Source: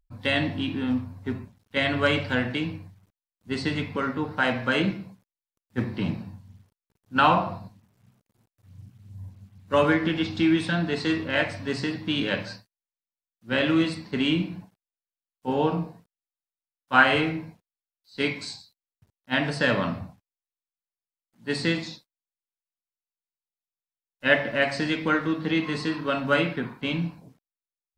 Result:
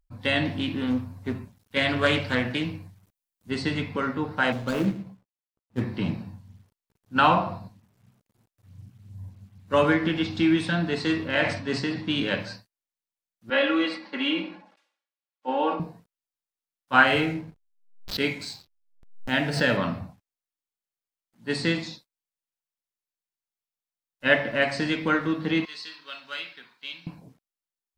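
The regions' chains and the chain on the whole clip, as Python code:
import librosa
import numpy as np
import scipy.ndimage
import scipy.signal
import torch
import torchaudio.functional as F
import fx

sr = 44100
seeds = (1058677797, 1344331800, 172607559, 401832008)

y = fx.chain(x, sr, fx.high_shelf(hz=7100.0, db=9.0),
    fx.doppler_dist(depth_ms=0.21), at=(0.45, 3.51))
y = fx.chain(y, sr, fx.median_filter(points=25),
    fx.doubler(ms=15.0, db=-11.5), at=(4.52, 5.81))
y = fx.chain(y, sr, fx.bandpass_edges(low_hz=100.0, high_hz=7800.0),
    fx.sustainer(db_per_s=75.0), at=(11.35, 12.1))
y = fx.chain(y, sr, fx.bandpass_edges(low_hz=460.0, high_hz=3400.0),
    fx.comb(ms=3.6, depth=0.9),
    fx.sustainer(db_per_s=100.0), at=(13.5, 15.8))
y = fx.chain(y, sr, fx.notch(hz=1100.0, q=5.7),
    fx.backlash(play_db=-44.0),
    fx.pre_swell(db_per_s=91.0), at=(17.06, 19.77))
y = fx.chain(y, sr, fx.bandpass_q(hz=4300.0, q=1.6),
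    fx.quant_companded(bits=8), at=(25.65, 27.07))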